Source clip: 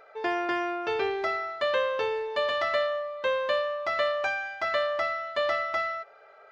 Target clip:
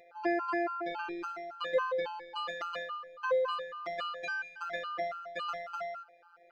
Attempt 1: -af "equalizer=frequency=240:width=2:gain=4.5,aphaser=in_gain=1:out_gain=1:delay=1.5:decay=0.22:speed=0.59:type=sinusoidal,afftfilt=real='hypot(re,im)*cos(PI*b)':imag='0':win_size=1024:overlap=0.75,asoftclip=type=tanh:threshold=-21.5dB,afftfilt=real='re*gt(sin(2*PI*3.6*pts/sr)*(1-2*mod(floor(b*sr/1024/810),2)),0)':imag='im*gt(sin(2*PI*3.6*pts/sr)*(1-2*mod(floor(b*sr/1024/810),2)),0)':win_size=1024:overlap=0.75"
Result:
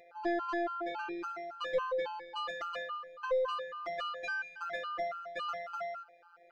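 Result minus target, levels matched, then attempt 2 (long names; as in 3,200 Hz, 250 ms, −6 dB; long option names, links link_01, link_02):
soft clipping: distortion +18 dB
-af "equalizer=frequency=240:width=2:gain=4.5,aphaser=in_gain=1:out_gain=1:delay=1.5:decay=0.22:speed=0.59:type=sinusoidal,afftfilt=real='hypot(re,im)*cos(PI*b)':imag='0':win_size=1024:overlap=0.75,asoftclip=type=tanh:threshold=-10dB,afftfilt=real='re*gt(sin(2*PI*3.6*pts/sr)*(1-2*mod(floor(b*sr/1024/810),2)),0)':imag='im*gt(sin(2*PI*3.6*pts/sr)*(1-2*mod(floor(b*sr/1024/810),2)),0)':win_size=1024:overlap=0.75"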